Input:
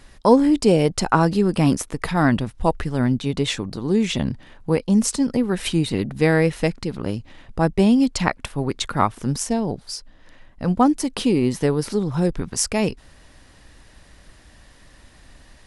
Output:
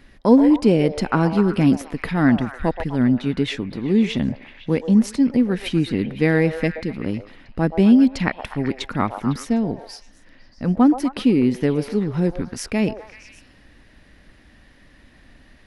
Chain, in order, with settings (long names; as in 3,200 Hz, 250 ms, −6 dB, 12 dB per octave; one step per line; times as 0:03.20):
octave-band graphic EQ 250/1,000/2,000/8,000 Hz +7/−4/+5/−11 dB
on a send: echo through a band-pass that steps 126 ms, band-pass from 680 Hz, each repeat 0.7 octaves, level −5.5 dB
on the sum: level −3 dB